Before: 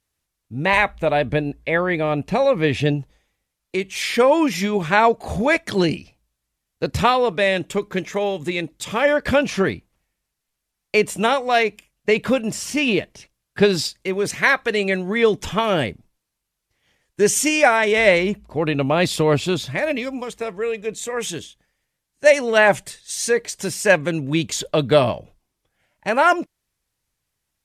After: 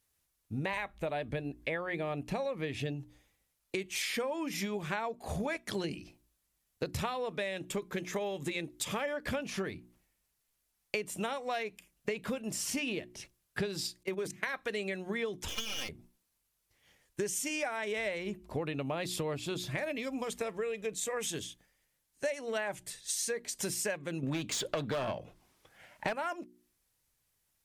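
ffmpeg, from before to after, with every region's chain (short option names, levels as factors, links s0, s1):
-filter_complex "[0:a]asettb=1/sr,asplit=3[s0][s1][s2];[s0]atrim=end=14.034[s3];[s1]atrim=start=14.03:end=14.54,asetpts=PTS-STARTPTS,afade=t=in:d=0.004:c=qsin,afade=t=out:st=0.506:d=0.004:c=qsin,agate=range=0.0708:threshold=0.0562:ratio=16:release=100:detection=peak,bandreject=f=50:t=h:w=6,bandreject=f=100:t=h:w=6,bandreject=f=150:t=h:w=6,bandreject=f=200:t=h:w=6,bandreject=f=250:t=h:w=6,bandreject=f=300:t=h:w=6,acompressor=threshold=0.0891:ratio=1.5:attack=3.2:release=140:knee=1:detection=peak[s4];[s2]atrim=start=14.536[s5];[s3][s4]acrossfade=d=0.004:c1=hsin:c2=qsin[s6];[s6][s5]acrossfade=d=0.004:c1=qsin:c2=hsin,asettb=1/sr,asplit=3[s7][s8][s9];[s7]atrim=end=15.484[s10];[s8]atrim=start=15.48:end=15.89,asetpts=PTS-STARTPTS,afade=t=in:d=0.004:c=qsin,afade=t=out:st=0.406:d=0.004:c=qsin,highpass=f=2600:t=q:w=2.5,aecho=1:1:3.8:0.8,atrim=end_sample=18081,aeval=exprs='max(val(0),0)':c=same[s11];[s9]atrim=start=15.886[s12];[s10][s11]acrossfade=d=0.004:c1=hsin:c2=qsin[s13];[s13][s12]acrossfade=d=0.004:c1=qsin:c2=hsin,asettb=1/sr,asplit=3[s14][s15][s16];[s14]atrim=end=24.234[s17];[s15]atrim=start=24.23:end=26.13,asetpts=PTS-STARTPTS,afade=t=in:d=0.004:c=qsin,afade=t=out:st=1.896:d=0.004:c=qsin,bass=f=250:g=7,treble=f=4000:g=2,aeval=exprs='clip(val(0),-1,0.133)':c=same,asplit=2[s18][s19];[s19]highpass=f=720:p=1,volume=12.6,asoftclip=type=tanh:threshold=0.944[s20];[s18][s20]amix=inputs=2:normalize=0,lowpass=f=2100:p=1,volume=0.501[s21];[s16]atrim=start=26.126[s22];[s17][s21]acrossfade=d=0.004:c1=hsin:c2=qsin[s23];[s23][s22]acrossfade=d=0.004:c1=qsin:c2=hsin,highshelf=f=9800:g=9.5,bandreject=f=60:t=h:w=6,bandreject=f=120:t=h:w=6,bandreject=f=180:t=h:w=6,bandreject=f=240:t=h:w=6,bandreject=f=300:t=h:w=6,bandreject=f=360:t=h:w=6,acompressor=threshold=0.0355:ratio=12,volume=0.708"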